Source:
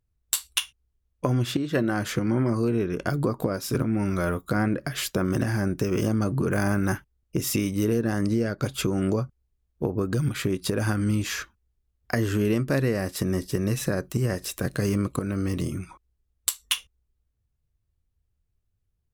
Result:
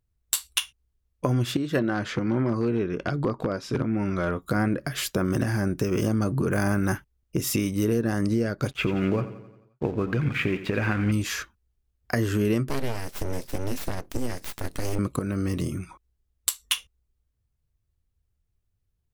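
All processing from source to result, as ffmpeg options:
-filter_complex "[0:a]asettb=1/sr,asplit=3[s0][s1][s2];[s0]atrim=end=1.794[s3];[s1]atrim=start=1.79:end=4.42,asetpts=PTS-STARTPTS,afade=t=in:d=0.004:c=qsin,afade=t=out:st=2.626:d=0.004:c=qsin,lowshelf=f=98:g=-5,aeval=exprs='0.15*(abs(mod(val(0)/0.15+3,4)-2)-1)':c=same,lowpass=4500[s4];[s2]atrim=start=4.416[s5];[s3][s4]acrossfade=d=0.004:c1=hsin:c2=qsin[s6];[s6][s5]acrossfade=d=0.004:c1=qsin:c2=hsin,asettb=1/sr,asplit=3[s7][s8][s9];[s7]atrim=end=8.714[s10];[s8]atrim=start=8.71:end=11.12,asetpts=PTS-STARTPTS,afade=t=in:d=0.004:c=qsin,afade=t=out:st=2.406:d=0.004:c=qsin,lowpass=f=2400:t=q:w=3.4,aeval=exprs='sgn(val(0))*max(abs(val(0))-0.00596,0)':c=same,aecho=1:1:88|176|264|352|440|528:0.211|0.116|0.0639|0.0352|0.0193|0.0106,atrim=end_sample=106281[s11];[s9]atrim=start=11.116[s12];[s10][s11]acrossfade=d=0.004:c1=hsin:c2=qsin[s13];[s13][s12]acrossfade=d=0.004:c1=qsin:c2=hsin,asettb=1/sr,asplit=3[s14][s15][s16];[s14]atrim=end=12.694[s17];[s15]atrim=start=12.69:end=14.99,asetpts=PTS-STARTPTS,afade=t=in:d=0.004:c=qsin,afade=t=out:st=2.296:d=0.004:c=qsin,equalizer=f=850:w=0.87:g=-11,aeval=exprs='abs(val(0))':c=same[s18];[s16]atrim=start=14.986[s19];[s17][s18]acrossfade=d=0.004:c1=hsin:c2=qsin[s20];[s20][s19]acrossfade=d=0.004:c1=qsin:c2=hsin"

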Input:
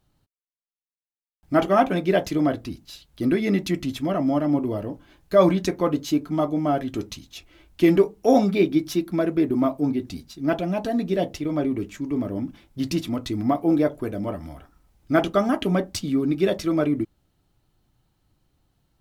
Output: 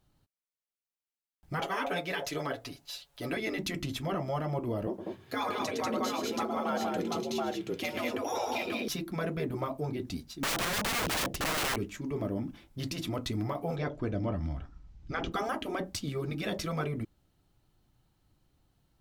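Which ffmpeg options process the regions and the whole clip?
-filter_complex "[0:a]asettb=1/sr,asplit=3[s0][s1][s2];[s0]atrim=end=1.614[s3];[s1]atrim=start=1.61:end=3.37,asetpts=PTS-STARTPTS,afade=t=in:d=0.004:c=qsin,afade=t=out:st=1.756:d=0.004:c=qsin,lowshelf=f=390:t=q:w=1.5:g=-11.5,aecho=1:1:7.1:0.91,atrim=end_sample=77616[s4];[s2]atrim=start=3.366[s5];[s3][s4]acrossfade=d=0.004:c1=hsin:c2=qsin[s6];[s6][s5]acrossfade=d=0.004:c1=qsin:c2=hsin,asettb=1/sr,asplit=3[s7][s8][s9];[s7]atrim=end=4.874[s10];[s8]atrim=start=4.87:end=8.88,asetpts=PTS-STARTPTS,afade=t=in:d=0.004:c=qsin,afade=t=out:st=4.006:d=0.004:c=qsin,afreqshift=73,aecho=1:1:110|191|728:0.355|0.668|0.596,atrim=end_sample=176841[s11];[s9]atrim=start=8.876[s12];[s10][s11]acrossfade=d=0.004:c1=hsin:c2=qsin[s13];[s13][s12]acrossfade=d=0.004:c1=qsin:c2=hsin,asettb=1/sr,asplit=3[s14][s15][s16];[s14]atrim=end=10.434[s17];[s15]atrim=start=10.43:end=11.76,asetpts=PTS-STARTPTS,afade=t=in:d=0.004:c=qsin,afade=t=out:st=1.326:d=0.004:c=qsin,lowshelf=f=430:g=6,aeval=exprs='(mod(15*val(0)+1,2)-1)/15':c=same[s18];[s16]atrim=start=11.756[s19];[s17][s18]acrossfade=d=0.004:c1=hsin:c2=qsin[s20];[s20][s19]acrossfade=d=0.004:c1=qsin:c2=hsin,asettb=1/sr,asplit=3[s21][s22][s23];[s21]atrim=end=13.764[s24];[s22]atrim=start=13.76:end=15.32,asetpts=PTS-STARTPTS,afade=t=in:d=0.004:c=qsin,afade=t=out:st=1.556:d=0.004:c=qsin,lowpass=f=6500:w=0.5412,lowpass=f=6500:w=1.3066,asubboost=boost=9:cutoff=230[s25];[s23]atrim=start=15.316[s26];[s24][s25]acrossfade=d=0.004:c1=hsin:c2=qsin[s27];[s27][s26]acrossfade=d=0.004:c1=qsin:c2=hsin,afftfilt=real='re*lt(hypot(re,im),0.447)':imag='im*lt(hypot(re,im),0.447)':win_size=1024:overlap=0.75,alimiter=limit=0.1:level=0:latency=1:release=118,volume=0.75"

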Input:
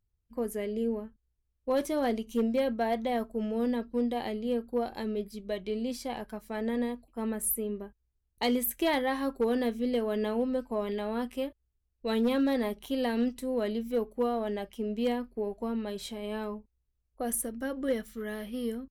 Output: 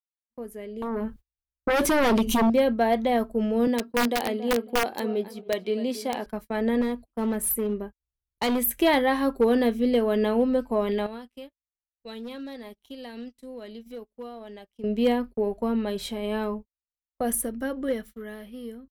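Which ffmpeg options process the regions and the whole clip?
-filter_complex "[0:a]asettb=1/sr,asplit=3[s0][s1][s2];[s0]atrim=end=0.824[s3];[s1]atrim=start=0.82:end=2.5,asetpts=PTS-STARTPTS,afade=t=in:d=0.004:c=qsin,afade=t=out:st=1.676:d=0.004:c=qsin,acompressor=threshold=0.00891:ratio=2:attack=3.2:release=140:knee=1:detection=peak,aeval=exprs='0.0668*sin(PI/2*4.47*val(0)/0.0668)':c=same[s4];[s2]atrim=start=2.496[s5];[s3][s4]acrossfade=d=0.004:c1=hsin:c2=qsin[s6];[s6][s5]acrossfade=d=0.004:c1=qsin:c2=hsin,asettb=1/sr,asplit=3[s7][s8][s9];[s7]atrim=end=3.674[s10];[s8]atrim=start=3.67:end=6.26,asetpts=PTS-STARTPTS,afade=t=in:d=0.004:c=qsin,afade=t=out:st=2.586:d=0.004:c=qsin,highpass=230,asplit=2[s11][s12];[s12]adelay=275,lowpass=f=2400:p=1,volume=0.2,asplit=2[s13][s14];[s14]adelay=275,lowpass=f=2400:p=1,volume=0.26,asplit=2[s15][s16];[s16]adelay=275,lowpass=f=2400:p=1,volume=0.26[s17];[s11][s13][s15][s17]amix=inputs=4:normalize=0,atrim=end_sample=114219,aeval=exprs='(mod(14.1*val(0)+1,2)-1)/14.1':c=same[s18];[s9]atrim=start=6.256[s19];[s10][s18]acrossfade=d=0.004:c1=hsin:c2=qsin[s20];[s20][s19]acrossfade=d=0.004:c1=qsin:c2=hsin,asettb=1/sr,asplit=3[s21][s22][s23];[s21]atrim=end=6.814[s24];[s22]atrim=start=6.81:end=8.62,asetpts=PTS-STARTPTS,afade=t=in:d=0.004:c=qsin,afade=t=out:st=1.806:d=0.004:c=qsin,acompressor=mode=upward:threshold=0.00891:ratio=2.5:attack=3.2:release=140:knee=2.83:detection=peak,volume=26.6,asoftclip=hard,volume=0.0376[s25];[s23]atrim=start=8.616[s26];[s24][s25]acrossfade=d=0.004:c1=hsin:c2=qsin[s27];[s27][s26]acrossfade=d=0.004:c1=qsin:c2=hsin,asettb=1/sr,asplit=3[s28][s29][s30];[s28]atrim=end=11.064[s31];[s29]atrim=start=11.06:end=14.84,asetpts=PTS-STARTPTS,afade=t=in:d=0.004:c=qsin,afade=t=out:st=3.776:d=0.004:c=qsin,equalizer=f=5200:w=0.57:g=8.5,acompressor=threshold=0.00891:ratio=8:attack=3.2:release=140:knee=1:detection=peak[s32];[s30]atrim=start=14.836[s33];[s31][s32]acrossfade=d=0.004:c1=hsin:c2=qsin[s34];[s34][s33]acrossfade=d=0.004:c1=qsin:c2=hsin,agate=range=0.0126:threshold=0.00708:ratio=16:detection=peak,equalizer=f=7000:t=o:w=1.1:g=-4,dynaudnorm=f=160:g=17:m=4.22,volume=0.531"

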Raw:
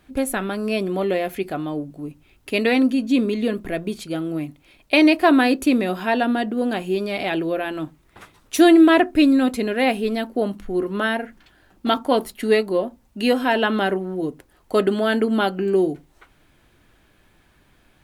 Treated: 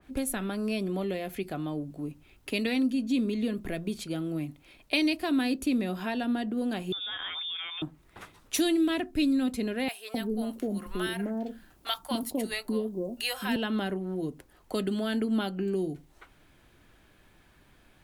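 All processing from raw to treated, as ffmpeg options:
-filter_complex "[0:a]asettb=1/sr,asplit=3[s0][s1][s2];[s0]atrim=end=6.924[s3];[s1]atrim=start=6.92:end=7.82,asetpts=PTS-STARTPTS,afade=t=in:d=0.004:c=qsin,afade=t=out:st=0.896:d=0.004:c=qsin,highpass=330,acompressor=threshold=0.0562:ratio=6:attack=3.2:release=140:knee=1:detection=peak,lowpass=f=3300:t=q:w=0.5098,lowpass=f=3300:t=q:w=0.6013,lowpass=f=3300:t=q:w=0.9,lowpass=f=3300:t=q:w=2.563,afreqshift=-3900[s4];[s2]atrim=start=7.816[s5];[s3][s4]acrossfade=d=0.004:c1=hsin:c2=qsin[s6];[s6][s5]acrossfade=d=0.004:c1=qsin:c2=hsin,asettb=1/sr,asplit=3[s7][s8][s9];[s7]atrim=end=9.884[s10];[s8]atrim=start=9.88:end=13.56,asetpts=PTS-STARTPTS,afade=t=in:d=0.004:c=qsin,afade=t=out:st=3.676:d=0.004:c=qsin,highshelf=f=7900:g=9,acrossover=split=680[s11][s12];[s11]adelay=260[s13];[s13][s12]amix=inputs=2:normalize=0,atrim=end_sample=162288[s14];[s9]atrim=start=13.556[s15];[s10][s14]acrossfade=d=0.004:c1=hsin:c2=qsin[s16];[s16][s15]acrossfade=d=0.004:c1=qsin:c2=hsin,acrossover=split=220|3000[s17][s18][s19];[s18]acompressor=threshold=0.0251:ratio=4[s20];[s17][s20][s19]amix=inputs=3:normalize=0,adynamicequalizer=threshold=0.00794:dfrequency=2400:dqfactor=0.7:tfrequency=2400:tqfactor=0.7:attack=5:release=100:ratio=0.375:range=3:mode=cutabove:tftype=highshelf,volume=0.75"

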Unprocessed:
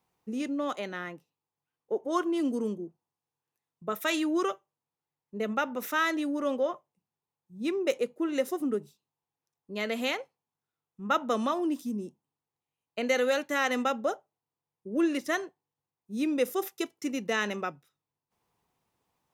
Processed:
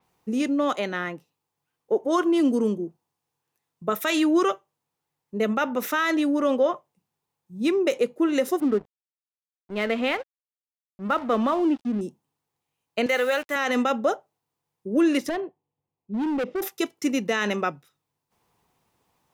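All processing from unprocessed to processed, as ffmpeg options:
-filter_complex "[0:a]asettb=1/sr,asplit=3[s0][s1][s2];[s0]atrim=end=8.604[s3];[s1]atrim=start=8.6:end=12.01,asetpts=PTS-STARTPTS,afade=t=in:d=0.004:c=qsin,afade=t=out:st=3.406:d=0.004:c=qsin,lowpass=2700,aeval=exprs='sgn(val(0))*max(abs(val(0))-0.00376,0)':c=same[s4];[s2]atrim=start=12.006[s5];[s3][s4]acrossfade=d=0.004:c1=hsin:c2=qsin[s6];[s6][s5]acrossfade=d=0.004:c1=qsin:c2=hsin,asettb=1/sr,asplit=3[s7][s8][s9];[s7]atrim=end=13.064[s10];[s8]atrim=start=13.06:end=13.56,asetpts=PTS-STARTPTS,afade=t=in:d=0.004:c=qsin,afade=t=out:st=0.496:d=0.004:c=qsin,highpass=f=760:p=1,equalizer=f=5500:t=o:w=1.1:g=-10,acrusher=bits=7:mix=0:aa=0.5[s11];[s9]atrim=start=13.556[s12];[s10][s11]acrossfade=d=0.004:c1=hsin:c2=qsin[s13];[s13][s12]acrossfade=d=0.004:c1=qsin:c2=hsin,asettb=1/sr,asplit=3[s14][s15][s16];[s14]atrim=end=15.294[s17];[s15]atrim=start=15.29:end=16.62,asetpts=PTS-STARTPTS,afade=t=in:d=0.004:c=qsin,afade=t=out:st=1.326:d=0.004:c=qsin,lowpass=f=2600:w=0.5412,lowpass=f=2600:w=1.3066,equalizer=f=1600:t=o:w=1.1:g=-14.5,volume=37.6,asoftclip=hard,volume=0.0266[s18];[s16]atrim=start=16.616[s19];[s17][s18]acrossfade=d=0.004:c1=hsin:c2=qsin[s20];[s20][s19]acrossfade=d=0.004:c1=qsin:c2=hsin,alimiter=limit=0.0891:level=0:latency=1:release=25,adynamicequalizer=threshold=0.00251:dfrequency=5700:dqfactor=0.7:tfrequency=5700:tqfactor=0.7:attack=5:release=100:ratio=0.375:range=2:mode=cutabove:tftype=highshelf,volume=2.51"

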